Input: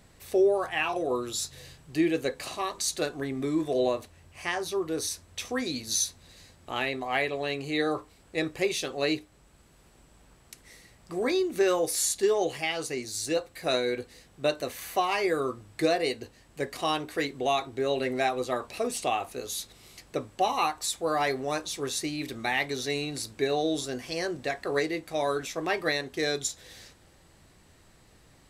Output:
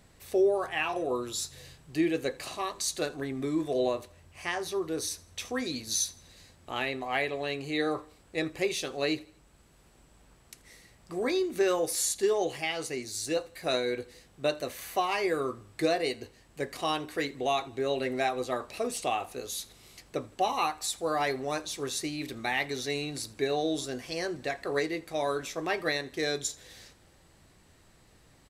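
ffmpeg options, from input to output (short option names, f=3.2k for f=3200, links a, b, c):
-af "aecho=1:1:82|164|246:0.0708|0.0304|0.0131,volume=-2dB"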